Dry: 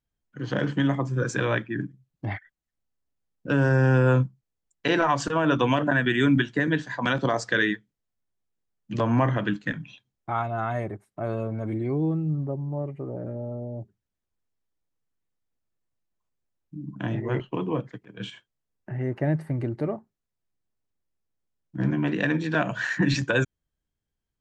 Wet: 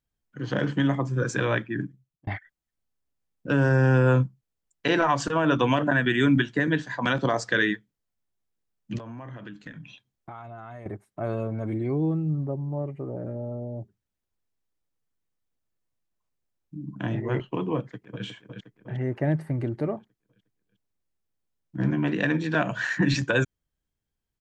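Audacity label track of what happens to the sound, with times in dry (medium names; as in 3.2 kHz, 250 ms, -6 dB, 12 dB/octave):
1.840000	2.270000	fade out linear
8.980000	10.860000	compression 8:1, threshold -37 dBFS
17.770000	18.240000	echo throw 360 ms, feedback 55%, level -6.5 dB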